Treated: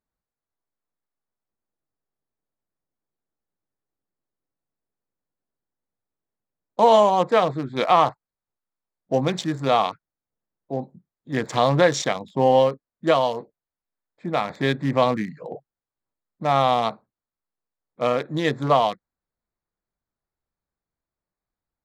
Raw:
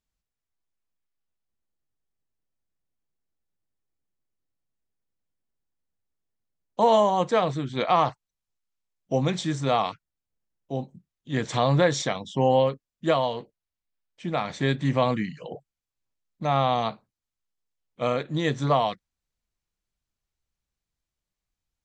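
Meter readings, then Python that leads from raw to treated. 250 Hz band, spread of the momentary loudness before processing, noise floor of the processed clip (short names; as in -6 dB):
+2.0 dB, 13 LU, under -85 dBFS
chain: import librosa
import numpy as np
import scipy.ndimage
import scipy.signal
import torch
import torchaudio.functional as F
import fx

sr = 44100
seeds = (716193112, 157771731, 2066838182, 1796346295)

y = fx.wiener(x, sr, points=15)
y = fx.low_shelf(y, sr, hz=140.0, db=-12.0)
y = y * 10.0 ** (5.0 / 20.0)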